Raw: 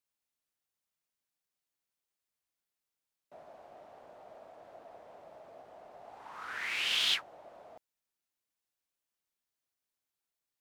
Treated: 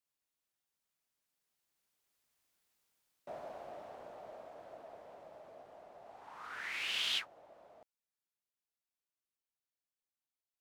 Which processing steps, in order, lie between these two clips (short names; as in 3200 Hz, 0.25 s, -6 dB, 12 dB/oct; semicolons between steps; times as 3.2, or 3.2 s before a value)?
Doppler pass-by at 2.69, 8 m/s, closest 6.2 m; gain +9.5 dB